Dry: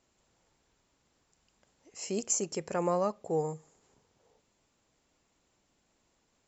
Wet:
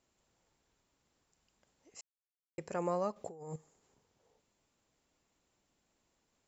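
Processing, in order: 2.01–2.58 s: mute; 3.16–3.56 s: compressor with a negative ratio -41 dBFS, ratio -1; trim -5 dB

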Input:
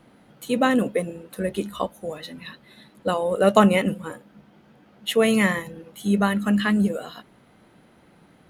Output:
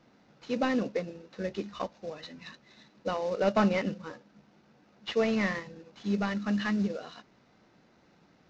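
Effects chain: CVSD coder 32 kbps; bass shelf 170 Hz -3 dB; band-stop 3.2 kHz, Q 13; trim -7 dB

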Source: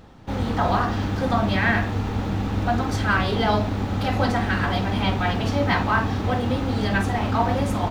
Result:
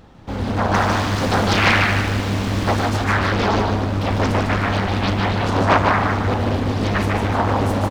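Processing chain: 0.74–2.89 s: treble shelf 2.2 kHz +11.5 dB; 5.42–5.78 s: time-frequency box 680–1400 Hz +9 dB; feedback delay 151 ms, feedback 47%, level -3.5 dB; loudspeaker Doppler distortion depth 0.95 ms; trim +1 dB

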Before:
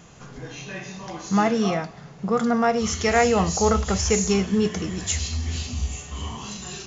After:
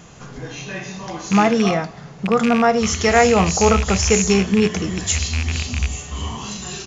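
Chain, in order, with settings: rattle on loud lows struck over -24 dBFS, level -18 dBFS; resampled via 22.05 kHz; trim +5 dB

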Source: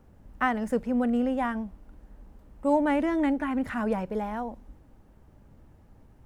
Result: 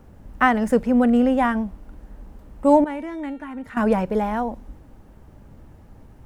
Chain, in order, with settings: 2.84–3.77 s: feedback comb 460 Hz, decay 0.73 s, mix 80%; trim +8.5 dB

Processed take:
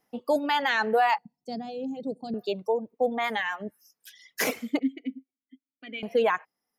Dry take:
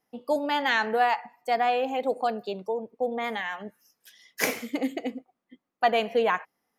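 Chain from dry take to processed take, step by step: reverb removal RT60 1.1 s; 1.18–2.34 s: FFT filter 100 Hz 0 dB, 160 Hz +10 dB, 1.2 kHz -28 dB, 2.3 kHz -27 dB, 4.7 kHz -5 dB, 13 kHz -24 dB; peak limiter -18.5 dBFS, peak gain reduction 10.5 dB; 4.79–6.03 s: vowel filter i; trim +4 dB

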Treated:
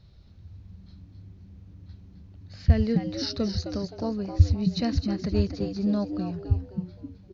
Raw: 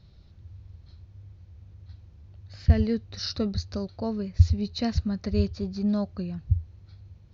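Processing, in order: frequency-shifting echo 261 ms, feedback 32%, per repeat +96 Hz, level -8.5 dB

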